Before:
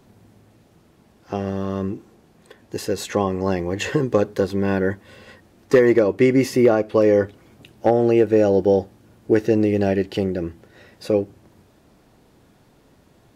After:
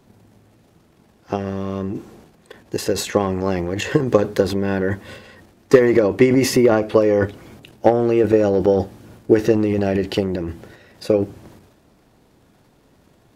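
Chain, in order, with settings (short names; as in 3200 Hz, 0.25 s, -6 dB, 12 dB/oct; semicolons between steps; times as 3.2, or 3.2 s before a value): transient shaper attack +7 dB, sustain +11 dB; gain -2 dB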